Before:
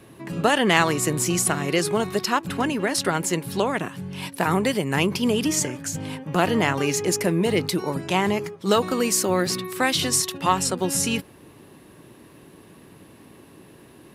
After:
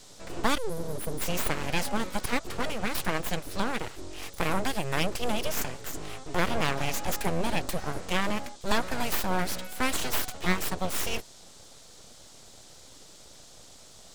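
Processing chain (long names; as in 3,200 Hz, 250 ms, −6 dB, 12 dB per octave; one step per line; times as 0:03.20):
time-frequency box erased 0:00.57–0:01.21, 360–9,000 Hz
full-wave rectification
noise in a band 3,200–8,400 Hz −50 dBFS
level −4 dB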